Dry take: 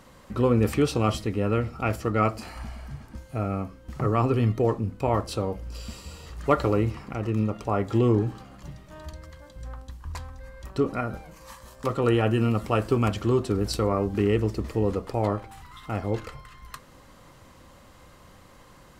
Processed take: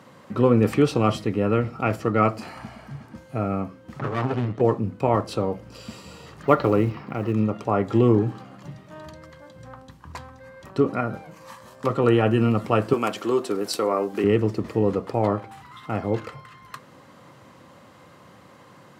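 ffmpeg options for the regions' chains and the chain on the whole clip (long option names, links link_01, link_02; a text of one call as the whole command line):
ffmpeg -i in.wav -filter_complex "[0:a]asettb=1/sr,asplit=3[link_01][link_02][link_03];[link_01]atrim=end=3.994[link_04];[link_02]atrim=start=3.99:end=4.61,asetpts=PTS-STARTPTS,afade=type=in:duration=0.004:curve=qsin,afade=type=out:start_time=0.616:duration=0.004:curve=qsin,lowpass=7200,aeval=exprs='max(val(0),0)':channel_layout=same[link_05];[link_03]atrim=start=4.606[link_06];[link_04][link_05]acrossfade=duration=0.004:curve1=hsin:curve2=qsin[link_07];[link_07][link_06]acrossfade=duration=0.004:curve1=qsin:curve2=hsin,asettb=1/sr,asplit=3[link_08][link_09][link_10];[link_08]atrim=end=6.434[link_11];[link_09]atrim=start=6.43:end=7.33,asetpts=PTS-STARTPTS,afade=type=in:duration=0.004:curve=qsin,afade=type=out:start_time=0.896:duration=0.004:curve=qsin,lowpass=frequency=5300:width=0.5412,lowpass=frequency=5300:width=1.3066,acrusher=bits=8:mode=log:mix=0:aa=0.000001[link_12];[link_10]atrim=start=7.326[link_13];[link_11][link_12]acrossfade=duration=0.004:curve1=hsin:curve2=qsin[link_14];[link_14][link_13]acrossfade=duration=0.004:curve1=qsin:curve2=hsin,asettb=1/sr,asplit=3[link_15][link_16][link_17];[link_15]atrim=end=12.934[link_18];[link_16]atrim=start=12.93:end=14.24,asetpts=PTS-STARTPTS,afade=type=in:duration=0.004:curve=qsin,afade=type=out:start_time=1.306:duration=0.004:curve=qsin,highpass=340,highshelf=frequency=6900:gain=11[link_19];[link_17]atrim=start=14.236[link_20];[link_18][link_19]acrossfade=duration=0.004:curve1=hsin:curve2=qsin[link_21];[link_21][link_20]acrossfade=duration=0.004:curve1=qsin:curve2=hsin,highpass=frequency=110:width=0.5412,highpass=frequency=110:width=1.3066,highshelf=frequency=4400:gain=-9,volume=4dB" out.wav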